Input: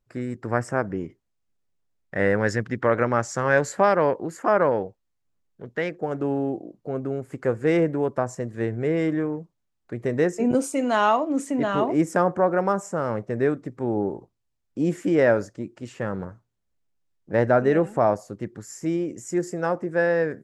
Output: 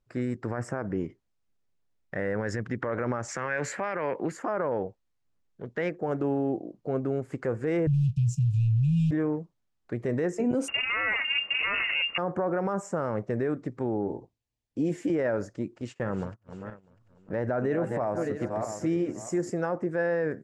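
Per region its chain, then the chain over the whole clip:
0:03.28–0:04.32: high-pass filter 120 Hz 24 dB per octave + parametric band 2,300 Hz +14.5 dB 1.1 octaves
0:07.87–0:09.11: low shelf with overshoot 350 Hz +13.5 dB, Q 1.5 + leveller curve on the samples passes 1 + linear-phase brick-wall band-stop 160–2,400 Hz
0:10.68–0:12.18: lower of the sound and its delayed copy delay 1.3 ms + low-shelf EQ 130 Hz +11.5 dB + voice inversion scrambler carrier 2,800 Hz
0:14.07–0:15.10: parametric band 1,300 Hz −10 dB 0.43 octaves + notch comb filter 190 Hz
0:15.73–0:19.50: feedback delay that plays each chunk backwards 324 ms, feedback 44%, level −11 dB + noise gate −45 dBFS, range −30 dB + upward compression, threshold −35 dBFS
whole clip: Bessel low-pass filter 7,000 Hz, order 2; dynamic equaliser 4,000 Hz, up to −6 dB, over −45 dBFS, Q 1.1; brickwall limiter −19.5 dBFS

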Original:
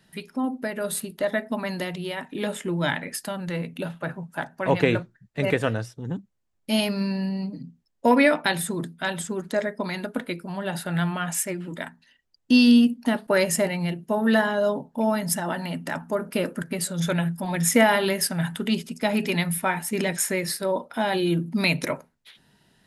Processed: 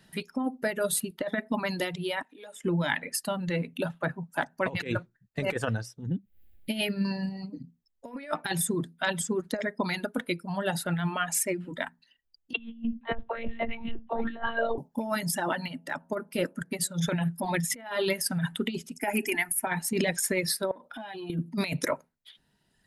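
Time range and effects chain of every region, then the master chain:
0:02.22–0:02.64: Bessel high-pass filter 420 Hz + downward compressor 2 to 1, threshold −51 dBFS
0:06.07–0:07.05: upward compression, threshold −34 dBFS + phaser with its sweep stopped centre 2,600 Hz, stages 4
0:12.53–0:14.78: one-pitch LPC vocoder at 8 kHz 230 Hz + all-pass dispersion lows, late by 60 ms, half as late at 300 Hz + single-tap delay 808 ms −23 dB
0:15.68–0:17.08: hum removal 93.46 Hz, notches 12 + expander for the loud parts, over −35 dBFS
0:18.98–0:19.67: high-shelf EQ 3,800 Hz +8 dB + phaser with its sweep stopped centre 790 Hz, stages 8
0:20.71–0:21.30: downward compressor, threshold −35 dBFS + saturating transformer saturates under 650 Hz
whole clip: reverb reduction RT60 1.8 s; compressor whose output falls as the input rises −26 dBFS, ratio −0.5; level −1.5 dB

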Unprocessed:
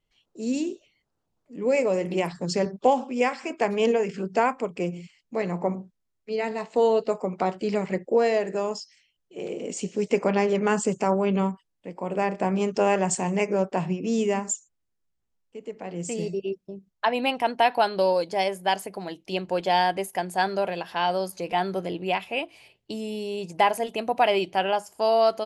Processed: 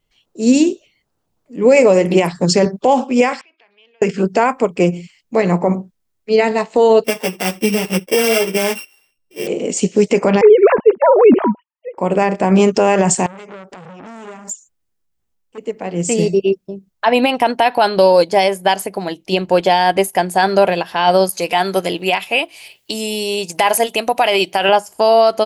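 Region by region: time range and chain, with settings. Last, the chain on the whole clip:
0:03.41–0:04.02: downward compressor 2.5 to 1, threshold −41 dBFS + resonant band-pass 3,600 Hz, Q 2.9 + high-frequency loss of the air 310 metres
0:07.04–0:09.47: samples sorted by size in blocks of 16 samples + string-ensemble chorus
0:10.41–0:11.98: three sine waves on the formant tracks + low-pass filter 1,300 Hz 6 dB per octave
0:13.26–0:15.58: downward compressor 8 to 1, threshold −34 dBFS + saturating transformer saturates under 2,300 Hz
0:21.29–0:24.69: spectral tilt +2 dB per octave + one half of a high-frequency compander encoder only
whole clip: high-shelf EQ 11,000 Hz +6 dB; boost into a limiter +17.5 dB; expander for the loud parts 1.5 to 1, over −24 dBFS

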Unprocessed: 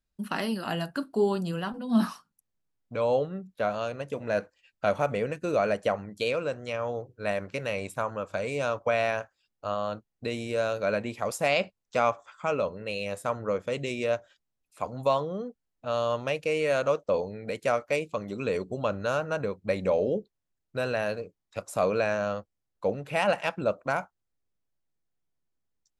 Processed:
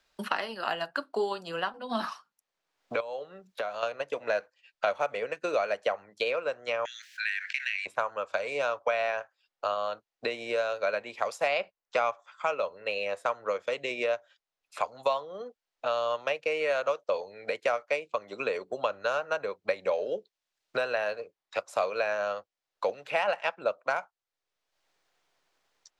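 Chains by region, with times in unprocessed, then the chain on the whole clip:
0:03.00–0:03.83: high-shelf EQ 7,400 Hz +8.5 dB + downward compressor 2 to 1, threshold −44 dBFS
0:06.85–0:07.86: Butterworth high-pass 1,600 Hz 96 dB per octave + envelope flattener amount 70%
whole clip: three-way crossover with the lows and the highs turned down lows −21 dB, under 460 Hz, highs −15 dB, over 6,100 Hz; transient designer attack +3 dB, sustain −4 dB; multiband upward and downward compressor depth 70%

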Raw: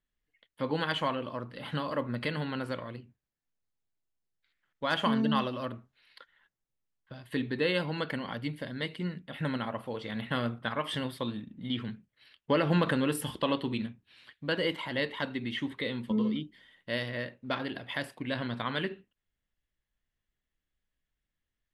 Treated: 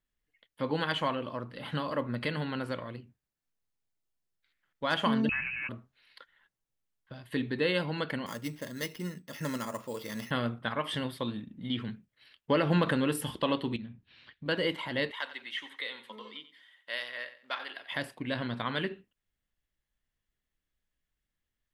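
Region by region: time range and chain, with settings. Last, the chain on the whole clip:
0:05.29–0:05.69: voice inversion scrambler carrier 2,800 Hz + downward compressor 2 to 1, threshold −32 dBFS
0:08.26–0:10.31: low-shelf EQ 170 Hz −5.5 dB + notch comb filter 760 Hz + sample-rate reduction 8,100 Hz
0:13.76–0:14.46: low-pass filter 5,800 Hz 24 dB per octave + downward compressor 3 to 1, threshold −45 dBFS + bass and treble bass +6 dB, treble −2 dB
0:15.11–0:17.92: high-pass filter 920 Hz + notch filter 4,500 Hz, Q 25 + repeating echo 90 ms, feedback 29%, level −14 dB
whole clip: no processing

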